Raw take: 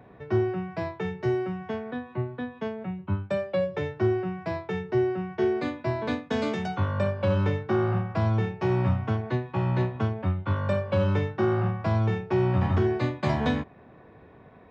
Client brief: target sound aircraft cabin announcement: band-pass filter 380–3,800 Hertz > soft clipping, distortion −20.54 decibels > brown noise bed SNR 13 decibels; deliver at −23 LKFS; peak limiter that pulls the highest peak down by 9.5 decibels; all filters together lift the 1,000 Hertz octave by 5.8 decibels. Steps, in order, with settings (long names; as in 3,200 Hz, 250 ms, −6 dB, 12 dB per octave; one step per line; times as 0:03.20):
parametric band 1,000 Hz +7.5 dB
brickwall limiter −21 dBFS
band-pass filter 380–3,800 Hz
soft clipping −24.5 dBFS
brown noise bed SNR 13 dB
level +12 dB